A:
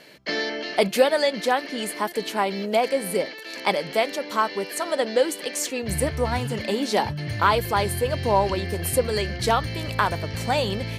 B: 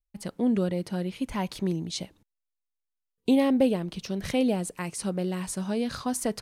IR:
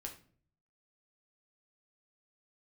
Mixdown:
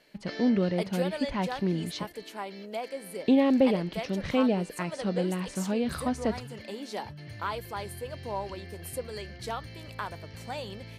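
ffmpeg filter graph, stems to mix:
-filter_complex "[0:a]volume=-14dB[a];[1:a]lowpass=3.7k,volume=0dB[b];[a][b]amix=inputs=2:normalize=0"

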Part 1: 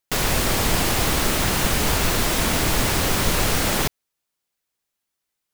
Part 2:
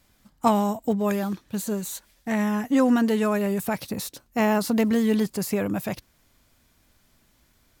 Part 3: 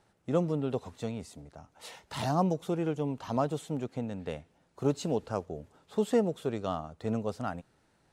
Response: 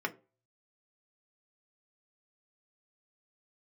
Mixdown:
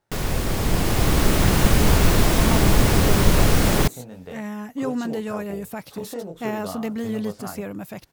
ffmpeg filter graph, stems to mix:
-filter_complex "[0:a]lowshelf=f=480:g=10.5,volume=-10dB,asplit=2[a][b];[b]volume=-20dB[c];[1:a]acompressor=mode=upward:threshold=-30dB:ratio=2.5,adelay=2050,volume=-15.5dB[d];[2:a]acompressor=threshold=-31dB:ratio=4,flanger=delay=19:depth=7.3:speed=0.42,volume=-6dB,asplit=2[e][f];[f]volume=-13.5dB[g];[3:a]atrim=start_sample=2205[h];[c][g]amix=inputs=2:normalize=0[i];[i][h]afir=irnorm=-1:irlink=0[j];[a][d][e][j]amix=inputs=4:normalize=0,dynaudnorm=f=150:g=13:m=9dB"

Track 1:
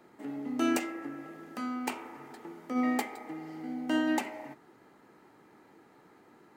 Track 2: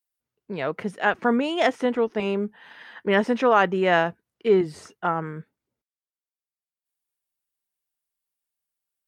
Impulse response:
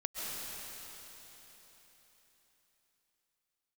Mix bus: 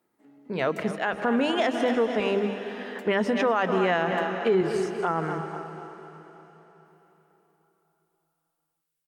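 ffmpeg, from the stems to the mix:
-filter_complex "[0:a]volume=-16.5dB[a];[1:a]bandreject=f=50:t=h:w=6,bandreject=f=100:t=h:w=6,bandreject=f=150:t=h:w=6,bandreject=f=200:t=h:w=6,bandreject=f=250:t=h:w=6,bandreject=f=300:t=h:w=6,bandreject=f=350:t=h:w=6,bandreject=f=400:t=h:w=6,volume=0.5dB,asplit=3[b][c][d];[c]volume=-12.5dB[e];[d]volume=-10.5dB[f];[2:a]atrim=start_sample=2205[g];[e][g]afir=irnorm=-1:irlink=0[h];[f]aecho=0:1:243|486|729|972|1215|1458:1|0.43|0.185|0.0795|0.0342|0.0147[i];[a][b][h][i]amix=inputs=4:normalize=0,alimiter=limit=-14.5dB:level=0:latency=1:release=97"

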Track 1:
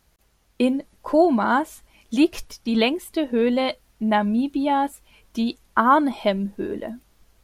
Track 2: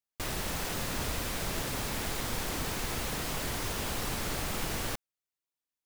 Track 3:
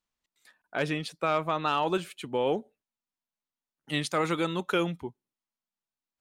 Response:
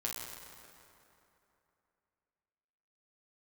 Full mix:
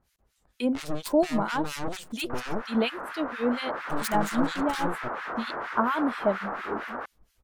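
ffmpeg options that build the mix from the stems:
-filter_complex "[0:a]volume=-3dB[a];[1:a]highpass=470,dynaudnorm=f=210:g=11:m=6dB,lowpass=f=1.4k:t=q:w=2.4,adelay=2100,volume=2dB[b];[2:a]equalizer=f=125:t=o:w=1:g=-4,equalizer=f=250:t=o:w=1:g=11,equalizer=f=2k:t=o:w=1:g=-10,equalizer=f=4k:t=o:w=1:g=4,equalizer=f=8k:t=o:w=1:g=12,asoftclip=type=hard:threshold=-22dB,aeval=exprs='0.188*(cos(1*acos(clip(val(0)/0.188,-1,1)))-cos(1*PI/2))+0.0841*(cos(8*acos(clip(val(0)/0.188,-1,1)))-cos(8*PI/2))':c=same,volume=-7.5dB[c];[a][b][c]amix=inputs=3:normalize=0,acrossover=split=1400[d][e];[d]aeval=exprs='val(0)*(1-1/2+1/2*cos(2*PI*4.3*n/s))':c=same[f];[e]aeval=exprs='val(0)*(1-1/2-1/2*cos(2*PI*4.3*n/s))':c=same[g];[f][g]amix=inputs=2:normalize=0"

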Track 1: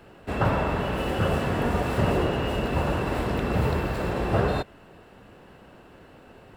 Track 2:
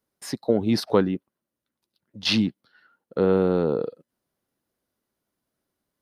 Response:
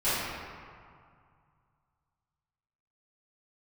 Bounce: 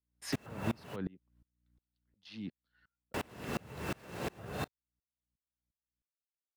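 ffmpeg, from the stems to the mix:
-filter_complex "[0:a]highpass=130,acrusher=bits=5:mix=0:aa=0.000001,adelay=50,volume=-1.5dB,asplit=3[a][b][c];[a]atrim=end=0.96,asetpts=PTS-STARTPTS,afade=t=out:st=0.956:d=0.004:c=hsin[d];[b]atrim=start=0.96:end=3.14,asetpts=PTS-STARTPTS,volume=0[e];[c]atrim=start=3.14,asetpts=PTS-STARTPTS,afade=t=in:d=0.004:c=hsin[f];[d][e][f]concat=n=3:v=0:a=1[g];[1:a]alimiter=limit=-15dB:level=0:latency=1:release=161,aeval=exprs='val(0)+0.000891*(sin(2*PI*60*n/s)+sin(2*PI*2*60*n/s)/2+sin(2*PI*3*60*n/s)/3+sin(2*PI*4*60*n/s)/4+sin(2*PI*5*60*n/s)/5)':c=same,volume=-1dB,afade=t=out:st=1.48:d=0.56:silence=0.298538,afade=t=out:st=2.92:d=0.37:silence=0.251189[h];[g][h]amix=inputs=2:normalize=0,equalizer=f=2.3k:w=0.82:g=5,acrossover=split=160[i][j];[j]acompressor=threshold=-31dB:ratio=6[k];[i][k]amix=inputs=2:normalize=0,aeval=exprs='val(0)*pow(10,-30*if(lt(mod(-2.8*n/s,1),2*abs(-2.8)/1000),1-mod(-2.8*n/s,1)/(2*abs(-2.8)/1000),(mod(-2.8*n/s,1)-2*abs(-2.8)/1000)/(1-2*abs(-2.8)/1000))/20)':c=same"

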